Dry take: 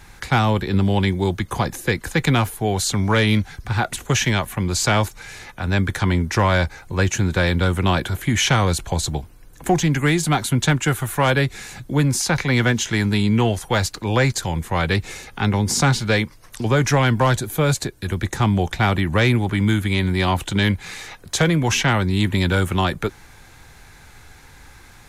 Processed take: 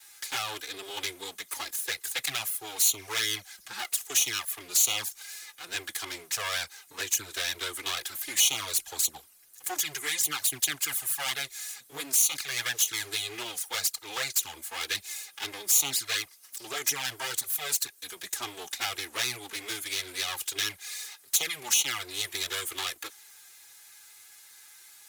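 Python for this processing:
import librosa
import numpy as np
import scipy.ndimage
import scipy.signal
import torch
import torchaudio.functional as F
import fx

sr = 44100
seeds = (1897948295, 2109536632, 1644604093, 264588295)

y = fx.lower_of_two(x, sr, delay_ms=2.4)
y = np.diff(y, prepend=0.0)
y = fx.env_flanger(y, sr, rest_ms=9.8, full_db=-24.5)
y = y * 10.0 ** (5.5 / 20.0)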